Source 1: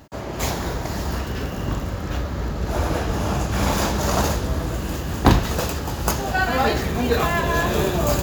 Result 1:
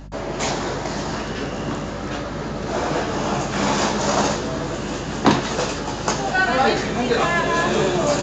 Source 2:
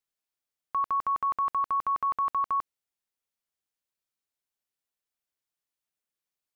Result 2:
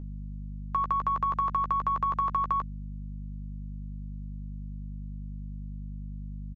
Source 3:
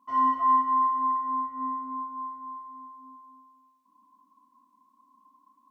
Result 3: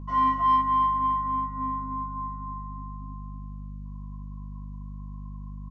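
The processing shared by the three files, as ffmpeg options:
ffmpeg -i in.wav -filter_complex "[0:a]highpass=frequency=88:width=0.5412,highpass=frequency=88:width=1.3066,acrossover=split=150|590[link_01][link_02][link_03];[link_01]acompressor=threshold=-44dB:ratio=6[link_04];[link_04][link_02][link_03]amix=inputs=3:normalize=0,aeval=exprs='val(0)+0.0112*(sin(2*PI*50*n/s)+sin(2*PI*2*50*n/s)/2+sin(2*PI*3*50*n/s)/3+sin(2*PI*4*50*n/s)/4+sin(2*PI*5*50*n/s)/5)':channel_layout=same,asplit=2[link_05][link_06];[link_06]asoftclip=type=tanh:threshold=-19.5dB,volume=-7.5dB[link_07];[link_05][link_07]amix=inputs=2:normalize=0,asplit=2[link_08][link_09];[link_09]adelay=14,volume=-9dB[link_10];[link_08][link_10]amix=inputs=2:normalize=0,aresample=16000,aresample=44100" out.wav

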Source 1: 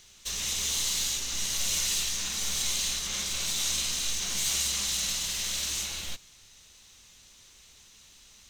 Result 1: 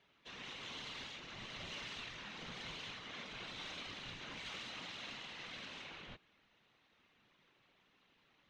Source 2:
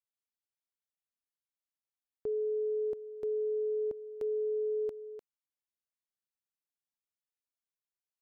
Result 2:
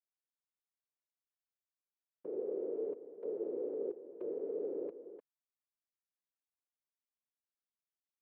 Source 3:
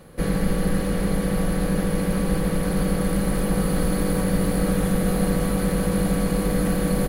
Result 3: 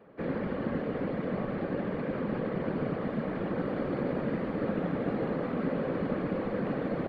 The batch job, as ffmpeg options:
ffmpeg -i in.wav -filter_complex "[0:a]adynamicsmooth=sensitivity=1.5:basefreq=3300,afftfilt=real='hypot(re,im)*cos(2*PI*random(0))':imag='hypot(re,im)*sin(2*PI*random(1))':win_size=512:overlap=0.75,acrossover=split=170 3400:gain=0.112 1 0.0794[link_01][link_02][link_03];[link_01][link_02][link_03]amix=inputs=3:normalize=0" out.wav

